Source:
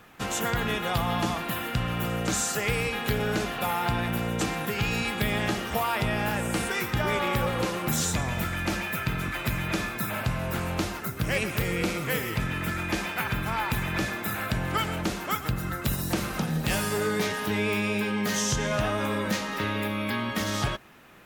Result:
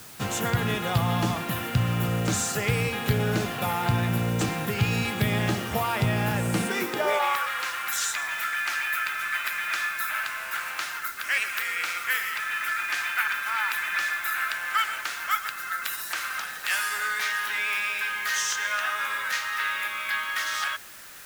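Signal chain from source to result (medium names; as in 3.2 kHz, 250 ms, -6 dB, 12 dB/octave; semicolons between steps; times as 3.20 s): high-pass sweep 100 Hz -> 1.5 kHz, 6.46–7.47 s; added noise white -46 dBFS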